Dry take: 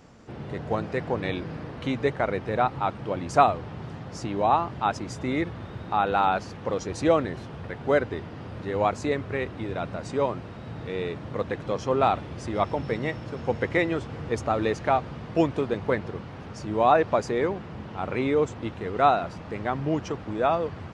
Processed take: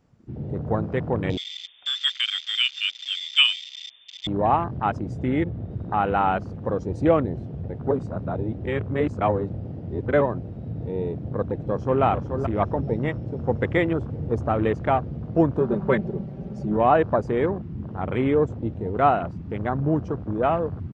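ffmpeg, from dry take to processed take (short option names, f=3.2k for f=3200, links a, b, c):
-filter_complex "[0:a]asettb=1/sr,asplit=3[a][b][c];[a]atrim=end=1.374[d];[b]atrim=start=1.37:end=4.27,asetpts=PTS-STARTPTS,afade=t=in:d=0.004:c=qsin,afade=t=out:st=2.896:d=0.004:c=qsin,lowpass=f=3.1k:t=q:w=0.5098,lowpass=f=3.1k:t=q:w=0.6013,lowpass=f=3.1k:t=q:w=0.9,lowpass=f=3.1k:t=q:w=2.563,afreqshift=-3700[e];[c]atrim=start=4.266[f];[d][e]acrossfade=d=0.004:c1=hsin:c2=qsin[g];[g][f]acrossfade=d=0.004:c1=qsin:c2=hsin,asettb=1/sr,asplit=3[h][i][j];[h]atrim=end=5.284[k];[i]atrim=start=5.28:end=5.71,asetpts=PTS-STARTPTS,afade=t=in:d=0.004:c=qsin,afade=t=out:st=0.426:d=0.004:c=qsin,highshelf=f=6.8k:g=-11.5[l];[j]atrim=start=5.706[m];[k][l]acrossfade=d=0.004:c1=hsin:c2=qsin[n];[n][m]acrossfade=d=0.004:c1=qsin:c2=hsin,asplit=2[o][p];[p]afade=t=in:st=11.6:d=0.01,afade=t=out:st=12.03:d=0.01,aecho=0:1:430|860|1290:0.446684|0.111671|0.0279177[q];[o][q]amix=inputs=2:normalize=0,asettb=1/sr,asplit=3[r][s][t];[r]atrim=end=15.604[u];[s]atrim=start=15.6:end=16.77,asetpts=PTS-STARTPTS,afade=t=in:d=0.004:c=qsin,afade=t=out:st=1.166:d=0.004:c=qsin,aecho=1:1:5.2:0.84,atrim=end_sample=51597[v];[t]atrim=start=16.766[w];[u][v]acrossfade=d=0.004:c1=hsin:c2=qsin[x];[x][w]acrossfade=d=0.004:c1=qsin:c2=hsin,asplit=3[y][z][aa];[y]atrim=end=7.912[ab];[z]atrim=start=7.908:end=10.212,asetpts=PTS-STARTPTS,areverse[ac];[aa]atrim=start=10.208[ad];[ab][ac]acrossfade=d=0.004:c1=hsin:c2=hsin[ae];[ae][ad]acrossfade=d=0.004:c1=hsin:c2=hsin,afwtdn=0.02,lowshelf=f=280:g=8"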